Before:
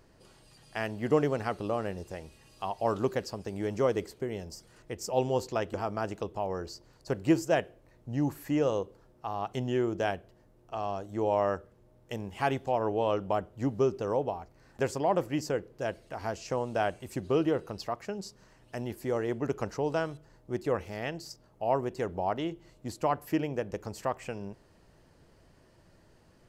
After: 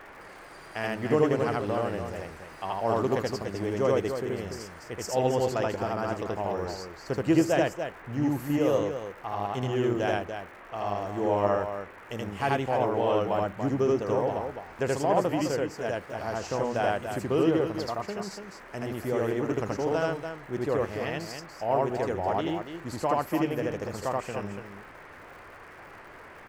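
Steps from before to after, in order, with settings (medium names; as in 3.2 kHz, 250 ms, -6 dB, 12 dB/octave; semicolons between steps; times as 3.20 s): loudspeakers at several distances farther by 27 m 0 dB, 99 m -7 dB; band noise 280–2000 Hz -48 dBFS; crackle 200 per s -47 dBFS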